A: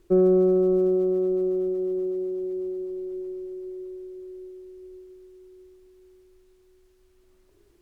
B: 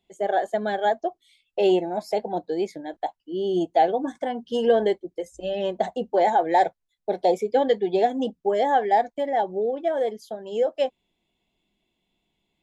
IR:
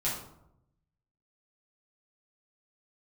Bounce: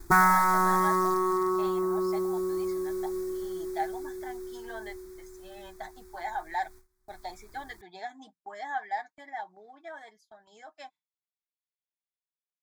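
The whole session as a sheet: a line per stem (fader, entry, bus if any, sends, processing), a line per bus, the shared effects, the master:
+0.5 dB, 0.00 s, no send, log-companded quantiser 6 bits; sine wavefolder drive 11 dB, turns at −12 dBFS; automatic ducking −6 dB, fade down 0.40 s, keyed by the second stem
0.0 dB, 0.00 s, no send, resonant band-pass 2,900 Hz, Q 0.92; comb filter 6.5 ms, depth 43%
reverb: not used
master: noise gate with hold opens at −39 dBFS; phaser with its sweep stopped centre 1,200 Hz, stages 4

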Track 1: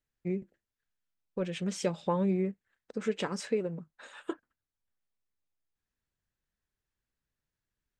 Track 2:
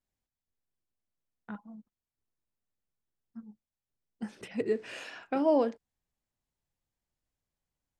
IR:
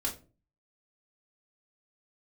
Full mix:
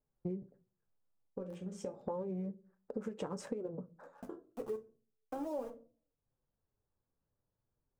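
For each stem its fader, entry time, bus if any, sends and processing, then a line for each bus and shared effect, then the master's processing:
+3.0 dB, 0.00 s, send −17 dB, adaptive Wiener filter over 15 samples; downward compressor, threshold −32 dBFS, peak gain reduction 8 dB; automatic ducking −19 dB, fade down 0.25 s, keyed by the second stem
−12.0 dB, 0.00 s, send −7 dB, centre clipping without the shift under −31 dBFS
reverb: on, pre-delay 3 ms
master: flanger 0.35 Hz, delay 4.6 ms, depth 6.8 ms, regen −35%; graphic EQ with 10 bands 125 Hz +8 dB, 500 Hz +7 dB, 1,000 Hz +5 dB, 2,000 Hz −8 dB, 4,000 Hz −8 dB; downward compressor 3 to 1, threshold −38 dBFS, peak gain reduction 10 dB

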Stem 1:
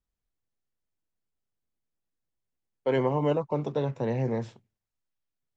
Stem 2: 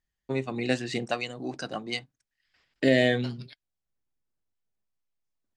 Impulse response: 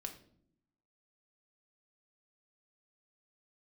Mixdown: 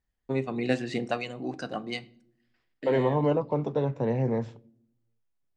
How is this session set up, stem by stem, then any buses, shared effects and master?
0.0 dB, 0.00 s, send −10.5 dB, no processing
0:02.44 −2 dB → 0:03.18 −10.5 dB, 0.00 s, send −4 dB, automatic ducking −15 dB, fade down 0.45 s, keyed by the first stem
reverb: on, pre-delay 4 ms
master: high-shelf EQ 2,700 Hz −8.5 dB

